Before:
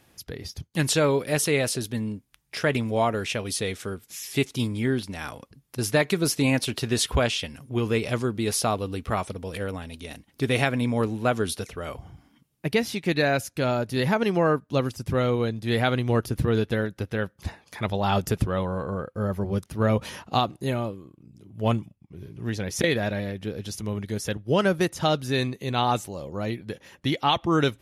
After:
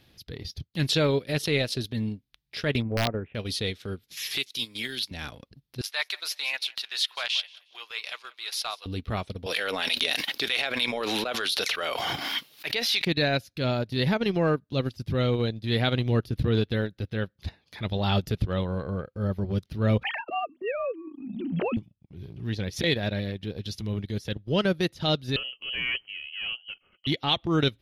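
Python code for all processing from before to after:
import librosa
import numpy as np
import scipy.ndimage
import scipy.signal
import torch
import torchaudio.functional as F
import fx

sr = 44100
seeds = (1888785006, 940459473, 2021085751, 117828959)

y = fx.chain(x, sr, fx.gaussian_blur(sigma=5.7),
    fx.overflow_wrap(gain_db=15.5), at=(2.82, 3.35))
y = fx.chain(y, sr, fx.highpass(hz=1500.0, slope=6),
    fx.high_shelf(hz=4800.0, db=9.0),
    fx.band_squash(depth_pct=100), at=(4.17, 5.11))
y = fx.chain(y, sr, fx.highpass(hz=870.0, slope=24),
    fx.echo_feedback(ms=180, feedback_pct=27, wet_db=-17), at=(5.81, 8.86))
y = fx.chain(y, sr, fx.highpass(hz=840.0, slope=12),
    fx.harmonic_tremolo(hz=3.3, depth_pct=50, crossover_hz=720.0),
    fx.env_flatten(amount_pct=100), at=(9.46, 13.05))
y = fx.chain(y, sr, fx.sine_speech(),
    fx.hum_notches(base_hz=50, count=5),
    fx.band_squash(depth_pct=100), at=(20.03, 21.77))
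y = fx.chain(y, sr, fx.tube_stage(drive_db=24.0, bias=0.75),
    fx.freq_invert(carrier_hz=3100), at=(25.36, 27.07))
y = fx.graphic_eq_10(y, sr, hz=(1000, 4000, 8000), db=(-5, 11, -12))
y = fx.transient(y, sr, attack_db=-6, sustain_db=-10)
y = fx.low_shelf(y, sr, hz=160.0, db=6.0)
y = F.gain(torch.from_numpy(y), -1.5).numpy()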